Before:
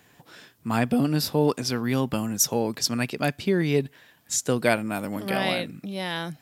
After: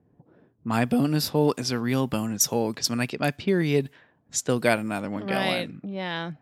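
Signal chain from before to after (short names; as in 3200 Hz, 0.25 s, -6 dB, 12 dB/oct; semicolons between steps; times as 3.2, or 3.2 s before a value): low-pass opened by the level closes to 390 Hz, open at -21.5 dBFS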